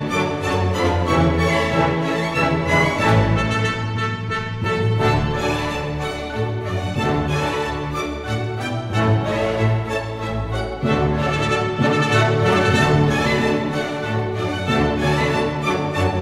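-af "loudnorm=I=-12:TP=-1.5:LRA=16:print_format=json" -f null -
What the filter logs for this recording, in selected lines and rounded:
"input_i" : "-19.8",
"input_tp" : "-3.5",
"input_lra" : "3.6",
"input_thresh" : "-29.8",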